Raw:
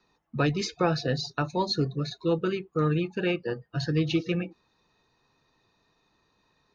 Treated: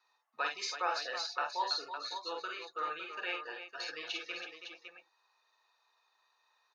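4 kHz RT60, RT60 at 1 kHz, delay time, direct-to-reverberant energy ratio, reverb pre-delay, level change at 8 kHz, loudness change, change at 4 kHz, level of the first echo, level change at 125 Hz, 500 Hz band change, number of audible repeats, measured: none, none, 45 ms, none, none, n/a, -9.0 dB, -3.5 dB, -5.5 dB, under -40 dB, -15.5 dB, 3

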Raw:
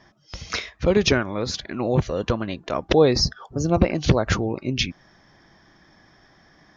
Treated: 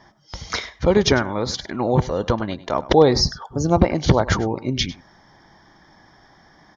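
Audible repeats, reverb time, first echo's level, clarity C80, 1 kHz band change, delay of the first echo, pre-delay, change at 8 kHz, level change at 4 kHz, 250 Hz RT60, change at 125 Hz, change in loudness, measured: 1, none, -17.5 dB, none, +6.0 dB, 0.1 s, none, n/a, +1.5 dB, none, +2.0 dB, +2.5 dB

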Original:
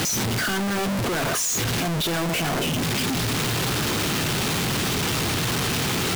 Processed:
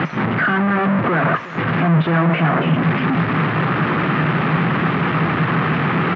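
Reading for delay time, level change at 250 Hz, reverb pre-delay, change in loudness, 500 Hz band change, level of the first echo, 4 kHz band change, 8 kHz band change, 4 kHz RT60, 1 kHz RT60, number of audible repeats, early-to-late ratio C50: 0.362 s, +9.0 dB, none, +5.5 dB, +6.0 dB, -18.0 dB, -7.5 dB, under -35 dB, none, none, 1, none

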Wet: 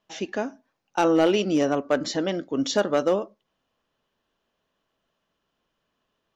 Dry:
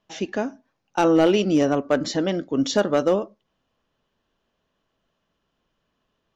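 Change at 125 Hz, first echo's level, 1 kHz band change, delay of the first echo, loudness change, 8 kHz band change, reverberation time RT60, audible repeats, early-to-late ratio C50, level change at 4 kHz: -5.0 dB, none, -1.5 dB, none, -2.5 dB, n/a, none, none, none, -1.0 dB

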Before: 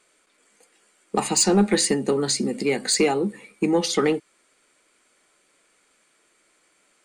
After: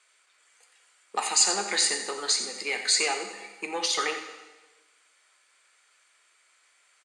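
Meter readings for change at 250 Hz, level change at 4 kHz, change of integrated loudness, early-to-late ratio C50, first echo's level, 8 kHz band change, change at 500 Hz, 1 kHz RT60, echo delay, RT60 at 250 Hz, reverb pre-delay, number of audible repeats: -20.5 dB, +1.0 dB, -3.5 dB, 7.0 dB, -12.0 dB, -0.5 dB, -13.0 dB, 1.2 s, 88 ms, 1.2 s, 5 ms, 1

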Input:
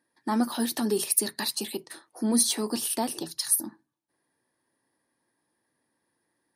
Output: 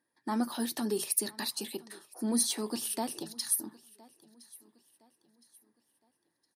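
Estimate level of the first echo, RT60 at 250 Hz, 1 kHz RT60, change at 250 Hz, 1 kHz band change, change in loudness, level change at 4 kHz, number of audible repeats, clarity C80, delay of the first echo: -23.0 dB, none, none, -5.5 dB, -5.5 dB, -5.5 dB, -5.5 dB, 2, none, 1.014 s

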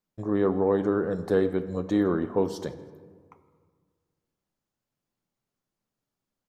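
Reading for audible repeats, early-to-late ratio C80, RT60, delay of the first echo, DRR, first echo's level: 2, 14.0 dB, 1.7 s, 0.163 s, 11.0 dB, -24.0 dB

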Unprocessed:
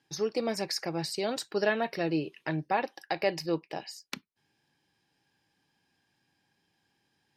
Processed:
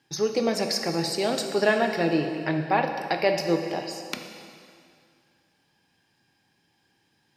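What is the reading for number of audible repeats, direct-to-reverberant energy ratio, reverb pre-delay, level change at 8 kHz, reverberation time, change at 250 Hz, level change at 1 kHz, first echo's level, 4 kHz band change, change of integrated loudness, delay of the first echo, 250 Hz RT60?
none, 4.5 dB, 7 ms, +6.0 dB, 2.2 s, +6.5 dB, +6.5 dB, none, +6.0 dB, +6.0 dB, none, 2.3 s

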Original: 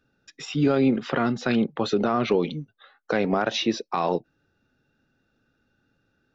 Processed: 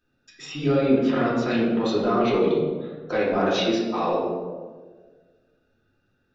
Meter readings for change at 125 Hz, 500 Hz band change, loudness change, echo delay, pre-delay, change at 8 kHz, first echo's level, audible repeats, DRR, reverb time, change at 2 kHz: 0.0 dB, +3.5 dB, +1.5 dB, none, 3 ms, n/a, none, none, -7.5 dB, 1.5 s, 0.0 dB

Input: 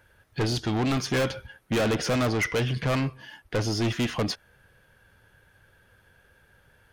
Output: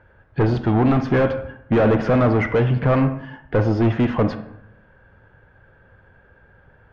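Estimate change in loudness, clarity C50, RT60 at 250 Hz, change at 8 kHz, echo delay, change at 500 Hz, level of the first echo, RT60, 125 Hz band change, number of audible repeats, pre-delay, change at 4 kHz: +7.5 dB, 11.0 dB, 0.90 s, under -15 dB, none, +9.0 dB, none, 0.75 s, +9.0 dB, none, 35 ms, -8.5 dB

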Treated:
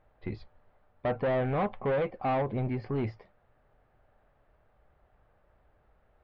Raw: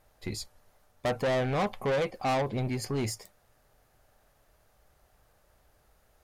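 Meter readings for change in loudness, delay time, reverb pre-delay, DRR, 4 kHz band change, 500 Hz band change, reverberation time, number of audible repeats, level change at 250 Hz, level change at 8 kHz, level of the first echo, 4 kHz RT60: -0.5 dB, none, none, none, -12.5 dB, -0.5 dB, none, none, 0.0 dB, under -35 dB, none, none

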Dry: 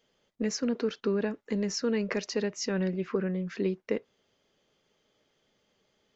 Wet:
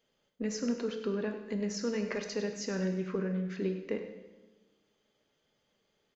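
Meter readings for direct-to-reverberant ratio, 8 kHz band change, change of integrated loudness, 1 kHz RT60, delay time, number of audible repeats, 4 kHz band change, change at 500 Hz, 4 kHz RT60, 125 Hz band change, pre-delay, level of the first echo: 5.0 dB, n/a, -3.5 dB, 1.1 s, 99 ms, 1, -5.5 dB, -4.0 dB, 1.1 s, -2.5 dB, 15 ms, -12.0 dB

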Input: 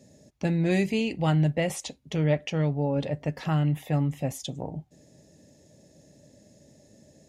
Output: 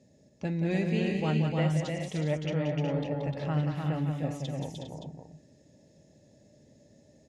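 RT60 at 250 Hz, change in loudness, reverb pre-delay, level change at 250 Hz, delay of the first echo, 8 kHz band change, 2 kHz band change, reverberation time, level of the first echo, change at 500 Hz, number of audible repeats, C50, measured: none, -3.5 dB, none, -3.0 dB, 0.179 s, -9.0 dB, -3.5 dB, none, -7.0 dB, -3.0 dB, 5, none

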